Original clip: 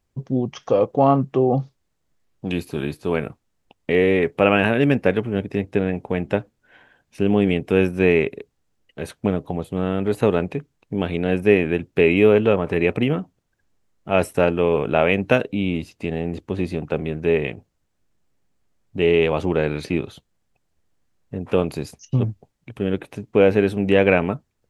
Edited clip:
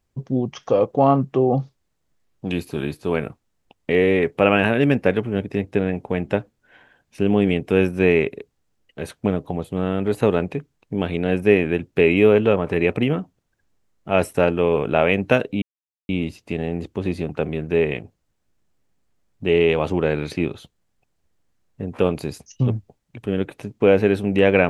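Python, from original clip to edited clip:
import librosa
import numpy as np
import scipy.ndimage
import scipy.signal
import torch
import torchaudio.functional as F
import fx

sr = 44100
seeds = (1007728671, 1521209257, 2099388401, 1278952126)

y = fx.edit(x, sr, fx.insert_silence(at_s=15.62, length_s=0.47), tone=tone)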